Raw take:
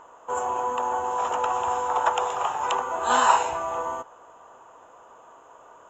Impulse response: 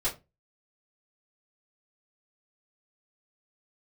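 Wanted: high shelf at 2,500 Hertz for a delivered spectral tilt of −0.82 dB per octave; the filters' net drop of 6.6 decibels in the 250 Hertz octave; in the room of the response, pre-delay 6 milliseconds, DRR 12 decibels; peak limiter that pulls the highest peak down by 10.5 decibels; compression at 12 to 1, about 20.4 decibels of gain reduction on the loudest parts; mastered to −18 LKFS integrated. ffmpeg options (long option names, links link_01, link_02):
-filter_complex "[0:a]equalizer=frequency=250:width_type=o:gain=-9,highshelf=frequency=2500:gain=7,acompressor=threshold=-33dB:ratio=12,alimiter=level_in=6.5dB:limit=-24dB:level=0:latency=1,volume=-6.5dB,asplit=2[link_01][link_02];[1:a]atrim=start_sample=2205,adelay=6[link_03];[link_02][link_03]afir=irnorm=-1:irlink=0,volume=-18.5dB[link_04];[link_01][link_04]amix=inputs=2:normalize=0,volume=22.5dB"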